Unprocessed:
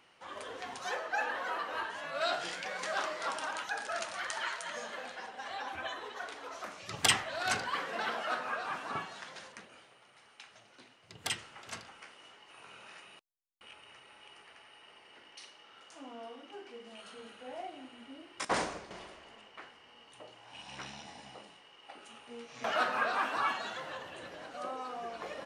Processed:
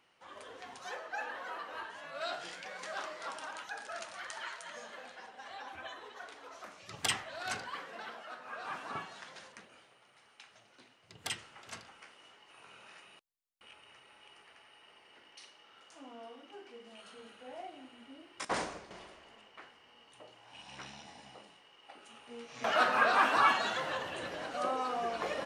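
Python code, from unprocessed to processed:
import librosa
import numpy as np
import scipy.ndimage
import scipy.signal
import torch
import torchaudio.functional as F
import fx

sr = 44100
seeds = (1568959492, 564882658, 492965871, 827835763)

y = fx.gain(x, sr, db=fx.line((7.6, -6.0), (8.38, -13.0), (8.68, -3.0), (22.03, -3.0), (23.25, 6.0)))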